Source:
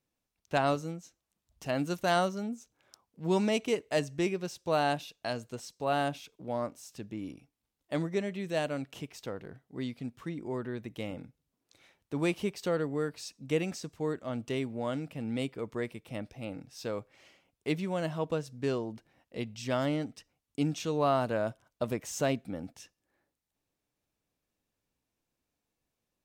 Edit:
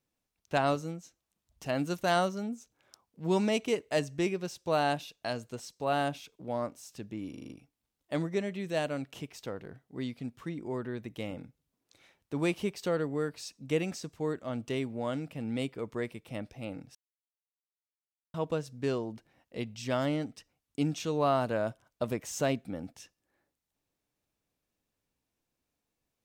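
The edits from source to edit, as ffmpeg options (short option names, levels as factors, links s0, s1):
-filter_complex "[0:a]asplit=8[s0][s1][s2][s3][s4][s5][s6][s7];[s0]atrim=end=7.342[s8];[s1]atrim=start=7.298:end=7.342[s9];[s2]atrim=start=7.298:end=7.342[s10];[s3]atrim=start=7.298:end=7.342[s11];[s4]atrim=start=7.298:end=7.342[s12];[s5]atrim=start=7.298:end=16.75,asetpts=PTS-STARTPTS,afade=t=out:st=9.448:d=0.004:c=hsin[s13];[s6]atrim=start=16.75:end=18.14,asetpts=PTS-STARTPTS,volume=0[s14];[s7]atrim=start=18.14,asetpts=PTS-STARTPTS,afade=t=in:d=0.004:c=hsin[s15];[s8][s9]acrossfade=d=0.004:c1=hsin:c2=hsin[s16];[s16][s10]acrossfade=d=0.004:c1=hsin:c2=hsin[s17];[s17][s11]acrossfade=d=0.004:c1=hsin:c2=hsin[s18];[s18][s12]acrossfade=d=0.004:c1=hsin:c2=hsin[s19];[s13][s14][s15]concat=n=3:v=0:a=1[s20];[s19][s20]acrossfade=d=0.004:c1=hsin:c2=hsin"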